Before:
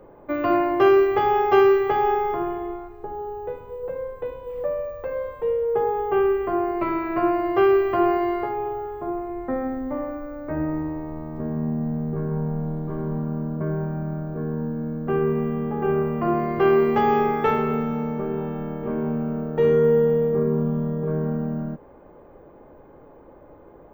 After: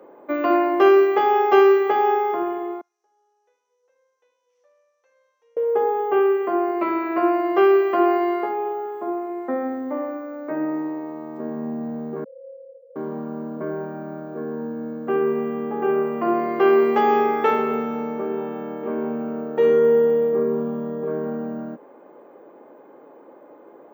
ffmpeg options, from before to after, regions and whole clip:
ffmpeg -i in.wav -filter_complex "[0:a]asettb=1/sr,asplit=3[link_01][link_02][link_03];[link_01]atrim=end=2.814[link_04];[link_02]atrim=start=2.81:end=5.57,asetpts=PTS-STARTPTS,afade=type=in:duration=0.004:curve=qsin,afade=type=out:start_time=2.756:duration=0.004:curve=qsin,bandpass=frequency=5900:width_type=q:width=13,acontrast=29[link_05];[link_03]atrim=start=5.566[link_06];[link_04][link_05]acrossfade=duration=0.004:curve1=hsin:curve2=qsin[link_07];[link_07][link_06]acrossfade=duration=0.004:curve1=qsin:curve2=hsin,asettb=1/sr,asplit=3[link_08][link_09][link_10];[link_08]atrim=end=12.244[link_11];[link_09]atrim=start=12.24:end=12.96,asetpts=PTS-STARTPTS,afade=type=in:duration=0.004:curve=qsin,afade=type=out:start_time=0.716:duration=0.004:curve=qsin,aeval=exprs='0.0631*(abs(mod(val(0)/0.0631+3,4)-2)-1)':channel_layout=same,asuperpass=centerf=520:order=12:qfactor=7[link_12];[link_10]atrim=start=12.956[link_13];[link_11][link_12]acrossfade=duration=0.004:curve1=hsin:curve2=qsin[link_14];[link_14][link_13]acrossfade=duration=0.004:curve1=qsin:curve2=hsin,highpass=frequency=240:width=0.5412,highpass=frequency=240:width=1.3066,equalizer=frequency=7100:width_type=o:width=0.27:gain=3,volume=2dB" out.wav

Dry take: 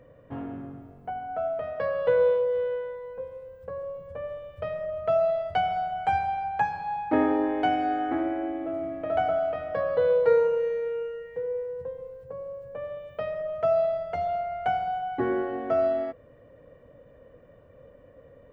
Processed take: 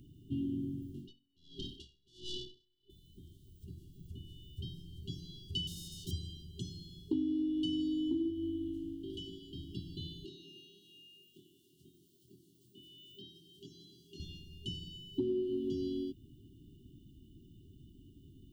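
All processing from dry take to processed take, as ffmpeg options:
ffmpeg -i in.wav -filter_complex "[0:a]asettb=1/sr,asplit=3[link_01][link_02][link_03];[link_01]atrim=end=0.944[link_04];[link_02]atrim=start=0.94:end=2.9,asetpts=PTS-STARTPTS,afade=type=in:duration=0.004:curve=qsin,afade=type=out:start_time=1.956:duration=0.004:curve=qsin,asplit=2[link_05][link_06];[link_06]highpass=frequency=720:poles=1,volume=24dB,asoftclip=type=tanh:threshold=-12dB[link_07];[link_05][link_07]amix=inputs=2:normalize=0,lowpass=frequency=1600:poles=1,volume=-6dB,aeval=exprs='val(0)*pow(10,-37*(0.5-0.5*cos(2*PI*1.4*n/s))/20)':channel_layout=same[link_08];[link_03]atrim=start=2.896[link_09];[link_04][link_08]acrossfade=duration=0.004:curve1=hsin:curve2=qsin[link_10];[link_10][link_09]acrossfade=duration=0.004:curve1=qsin:curve2=hsin,asettb=1/sr,asplit=3[link_11][link_12][link_13];[link_11]atrim=end=5.674[link_14];[link_12]atrim=start=5.67:end=6.11,asetpts=PTS-STARTPTS,afade=type=in:duration=0.004:curve=qsin,afade=type=out:start_time=0.436:duration=0.004:curve=qsin,lowpass=1500,aeval=exprs='sgn(val(0))*max(abs(val(0))-0.00531,0)':channel_layout=same[link_15];[link_13]atrim=start=6.106[link_16];[link_14][link_15]acrossfade=duration=0.004:curve1=hsin:curve2=qsin[link_17];[link_17][link_16]acrossfade=duration=0.004:curve1=qsin:curve2=hsin,asettb=1/sr,asplit=3[link_18][link_19][link_20];[link_18]atrim=end=8.304[link_21];[link_19]atrim=start=8.3:end=9.53,asetpts=PTS-STARTPTS,afade=type=in:duration=0.004:curve=qsin,afade=type=out:start_time=1.226:duration=0.004:curve=qsin,lowshelf=frequency=300:gain=-6.5,tremolo=f=240:d=0.621[link_22];[link_20]atrim=start=9.526[link_23];[link_21][link_22]acrossfade=duration=0.004:curve1=hsin:curve2=qsin[link_24];[link_24][link_23]acrossfade=duration=0.004:curve1=qsin:curve2=hsin,asettb=1/sr,asplit=3[link_25][link_26][link_27];[link_25]atrim=end=10.254[link_28];[link_26]atrim=start=10.25:end=14.2,asetpts=PTS-STARTPTS,afade=type=in:duration=0.004:curve=qsin,afade=type=out:start_time=3.946:duration=0.004:curve=qsin,acrossover=split=2600[link_29][link_30];[link_30]acompressor=threshold=-60dB:ratio=4:attack=1:release=60[link_31];[link_29][link_31]amix=inputs=2:normalize=0,highpass=350,asplit=2[link_32][link_33];[link_33]adelay=25,volume=-3.5dB[link_34];[link_32][link_34]amix=inputs=2:normalize=0,atrim=end_sample=174195[link_35];[link_27]atrim=start=14.196[link_36];[link_28][link_35]acrossfade=duration=0.004:curve1=hsin:curve2=qsin[link_37];[link_37][link_36]acrossfade=duration=0.004:curve1=qsin:curve2=hsin,afftfilt=real='re*(1-between(b*sr/4096,400,2800))':imag='im*(1-between(b*sr/4096,400,2800))':win_size=4096:overlap=0.75,highshelf=frequency=3300:gain=8.5,acompressor=threshold=-33dB:ratio=6,volume=2dB" out.wav

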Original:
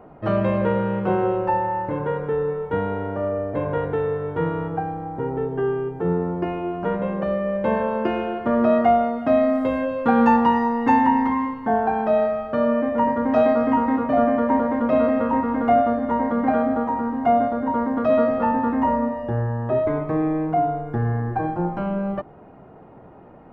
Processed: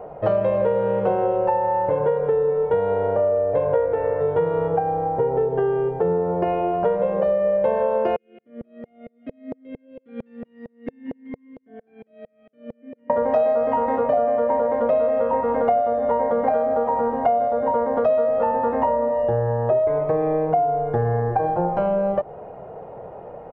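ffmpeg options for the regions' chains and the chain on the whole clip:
ffmpeg -i in.wav -filter_complex "[0:a]asettb=1/sr,asplit=3[link_01][link_02][link_03];[link_01]atrim=end=3.724[link_04];[link_02]atrim=start=3.72:end=4.21,asetpts=PTS-STARTPTS,afade=type=in:duration=0.004:curve=qsin,afade=type=out:start_time=0.486:duration=0.004:curve=qsin,lowpass=frequency=3500:width=0.5412,lowpass=frequency=3500:width=1.3066,asplit=2[link_05][link_06];[link_06]adelay=17,volume=-3dB[link_07];[link_05][link_07]amix=inputs=2:normalize=0,atrim=end_sample=21609[link_08];[link_03]atrim=start=4.206[link_09];[link_04][link_08]acrossfade=duration=0.004:curve1=hsin:curve2=qsin[link_10];[link_10][link_09]acrossfade=duration=0.004:curve1=qsin:curve2=hsin,asettb=1/sr,asplit=3[link_11][link_12][link_13];[link_11]atrim=end=8.164[link_14];[link_12]atrim=start=8.16:end=13.1,asetpts=PTS-STARTPTS,afade=type=in:duration=0.004:curve=qsin,afade=type=out:start_time=4.936:duration=0.004:curve=qsin,asplit=3[link_15][link_16][link_17];[link_15]bandpass=frequency=270:width_type=q:width=8,volume=0dB[link_18];[link_16]bandpass=frequency=2290:width_type=q:width=8,volume=-6dB[link_19];[link_17]bandpass=frequency=3010:width_type=q:width=8,volume=-9dB[link_20];[link_18][link_19][link_20]amix=inputs=3:normalize=0,aeval=exprs='val(0)*pow(10,-39*if(lt(mod(-4.4*n/s,1),2*abs(-4.4)/1000),1-mod(-4.4*n/s,1)/(2*abs(-4.4)/1000),(mod(-4.4*n/s,1)-2*abs(-4.4)/1000)/(1-2*abs(-4.4)/1000))/20)':channel_layout=same[link_21];[link_13]atrim=start=13.096[link_22];[link_14][link_21]acrossfade=duration=0.004:curve1=hsin:curve2=qsin[link_23];[link_23][link_22]acrossfade=duration=0.004:curve1=qsin:curve2=hsin,firequalizer=gain_entry='entry(160,0);entry(280,-8);entry(480,12);entry(1200,0)':delay=0.05:min_phase=1,acompressor=threshold=-20dB:ratio=6,volume=2.5dB" out.wav

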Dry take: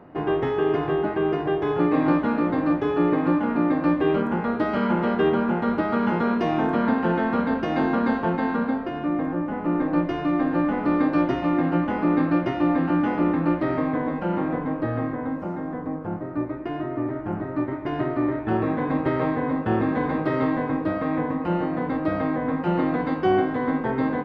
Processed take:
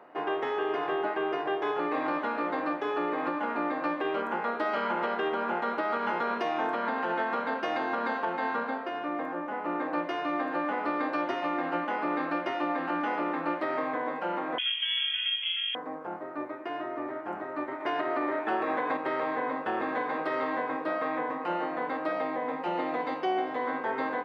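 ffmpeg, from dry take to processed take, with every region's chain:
ffmpeg -i in.wav -filter_complex "[0:a]asettb=1/sr,asplit=3[link_01][link_02][link_03];[link_01]atrim=end=14.584[link_04];[link_02]atrim=start=14.58:end=15.75,asetpts=PTS-STARTPTS,afade=type=in:duration=0.004:curve=qsin,afade=type=out:start_time=1.166:duration=0.004:curve=qsin,equalizer=frequency=480:width_type=o:width=0.46:gain=-12.5,lowpass=frequency=3000:width_type=q:width=0.5098,lowpass=frequency=3000:width_type=q:width=0.6013,lowpass=frequency=3000:width_type=q:width=0.9,lowpass=frequency=3000:width_type=q:width=2.563,afreqshift=-3500[link_05];[link_03]atrim=start=15.746[link_06];[link_04][link_05]acrossfade=duration=0.004:curve1=hsin:curve2=qsin[link_07];[link_07][link_06]acrossfade=duration=0.004:curve1=qsin:curve2=hsin,asettb=1/sr,asplit=3[link_08][link_09][link_10];[link_08]atrim=end=17.804[link_11];[link_09]atrim=start=17.8:end=18.97,asetpts=PTS-STARTPTS,afade=type=in:duration=0.004:curve=qsin,afade=type=out:start_time=1.166:duration=0.004:curve=qsin,highpass=frequency=210:poles=1,acontrast=29[link_12];[link_10]atrim=start=18.966[link_13];[link_11][link_12]acrossfade=duration=0.004:curve1=hsin:curve2=qsin[link_14];[link_14][link_13]acrossfade=duration=0.004:curve1=qsin:curve2=hsin,asettb=1/sr,asplit=3[link_15][link_16][link_17];[link_15]atrim=end=22.124[link_18];[link_16]atrim=start=22.12:end=23.67,asetpts=PTS-STARTPTS,afade=type=in:duration=0.004:curve=qsin,afade=type=out:start_time=1.546:duration=0.004:curve=qsin,equalizer=frequency=1500:width=4.5:gain=-8.5,bandreject=frequency=1100:width=22[link_19];[link_17]atrim=start=23.666[link_20];[link_18][link_19]acrossfade=duration=0.004:curve1=hsin:curve2=qsin[link_21];[link_21][link_20]acrossfade=duration=0.004:curve1=qsin:curve2=hsin,highpass=570,alimiter=limit=-20.5dB:level=0:latency=1:release=109" out.wav

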